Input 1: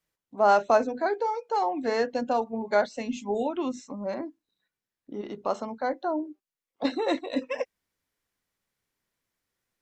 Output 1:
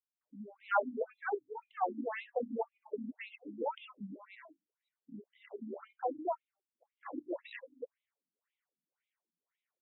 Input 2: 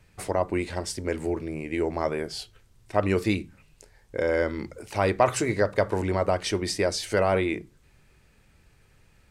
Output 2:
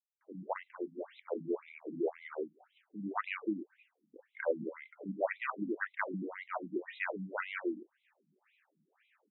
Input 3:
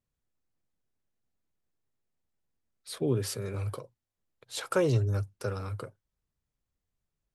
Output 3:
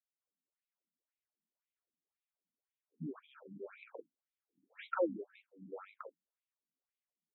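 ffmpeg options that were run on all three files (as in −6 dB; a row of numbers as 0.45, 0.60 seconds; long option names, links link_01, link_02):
-filter_complex "[0:a]acontrast=26,acrossover=split=270|5600[link_01][link_02][link_03];[link_02]adelay=210[link_04];[link_03]adelay=270[link_05];[link_01][link_04][link_05]amix=inputs=3:normalize=0,afftfilt=real='re*between(b*sr/1024,210*pow(2900/210,0.5+0.5*sin(2*PI*1.9*pts/sr))/1.41,210*pow(2900/210,0.5+0.5*sin(2*PI*1.9*pts/sr))*1.41)':imag='im*between(b*sr/1024,210*pow(2900/210,0.5+0.5*sin(2*PI*1.9*pts/sr))/1.41,210*pow(2900/210,0.5+0.5*sin(2*PI*1.9*pts/sr))*1.41)':win_size=1024:overlap=0.75,volume=-7dB"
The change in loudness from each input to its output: −11.5, −12.0, −11.5 LU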